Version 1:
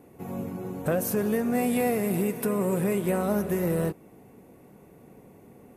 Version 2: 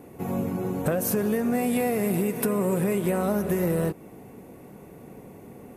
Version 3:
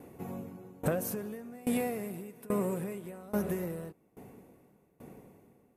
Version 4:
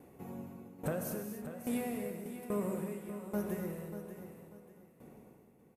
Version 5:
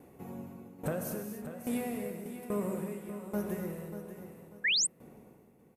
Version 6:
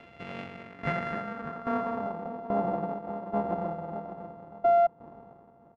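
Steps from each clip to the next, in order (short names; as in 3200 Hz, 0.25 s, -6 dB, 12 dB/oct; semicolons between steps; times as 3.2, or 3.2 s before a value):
compressor, threshold -28 dBFS, peak gain reduction 7 dB; gain +6.5 dB
dB-ramp tremolo decaying 1.2 Hz, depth 23 dB; gain -3 dB
feedback echo 0.589 s, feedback 29%, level -11 dB; non-linear reverb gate 0.31 s flat, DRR 4 dB; gain -6 dB
painted sound rise, 4.64–4.87, 1600–9100 Hz -29 dBFS; gain +1.5 dB
sample sorter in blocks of 64 samples; low-pass sweep 2600 Hz -> 870 Hz, 0.41–2.32; gain +2.5 dB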